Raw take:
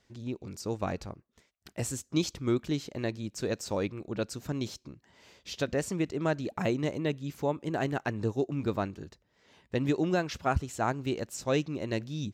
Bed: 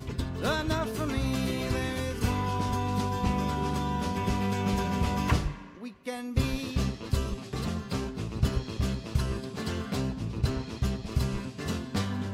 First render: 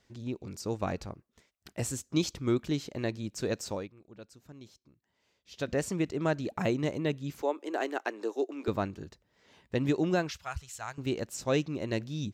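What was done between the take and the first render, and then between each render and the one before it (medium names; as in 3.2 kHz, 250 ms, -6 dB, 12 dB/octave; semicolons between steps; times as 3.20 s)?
3.65–5.72 s: dip -16.5 dB, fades 0.24 s; 7.42–8.68 s: steep high-pass 300 Hz; 10.31–10.98 s: amplifier tone stack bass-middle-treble 10-0-10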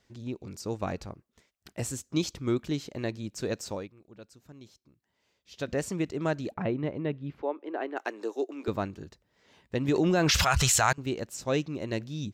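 6.54–7.97 s: distance through air 400 m; 9.88–10.93 s: level flattener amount 100%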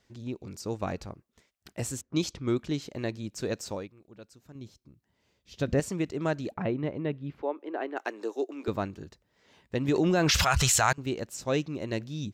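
2.01–2.82 s: level-controlled noise filter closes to 1.5 kHz, open at -24.5 dBFS; 4.55–5.80 s: bass shelf 290 Hz +11 dB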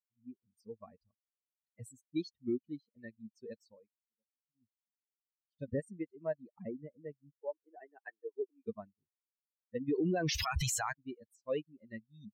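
expander on every frequency bin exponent 3; peak limiter -25 dBFS, peak gain reduction 9.5 dB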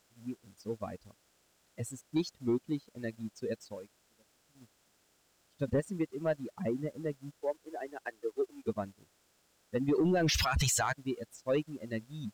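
spectral levelling over time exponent 0.6; waveshaping leveller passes 1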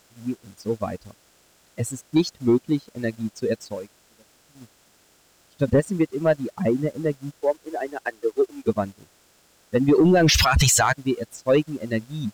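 trim +12 dB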